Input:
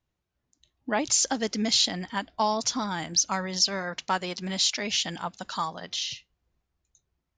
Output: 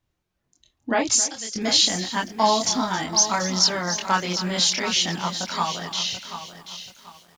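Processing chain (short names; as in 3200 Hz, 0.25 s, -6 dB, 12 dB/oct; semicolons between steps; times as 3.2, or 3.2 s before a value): 1.15–1.56 pre-emphasis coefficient 0.9; chorus voices 2, 0.55 Hz, delay 25 ms, depth 3.1 ms; echo 0.269 s -15.5 dB; lo-fi delay 0.735 s, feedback 35%, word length 9-bit, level -10.5 dB; gain +8 dB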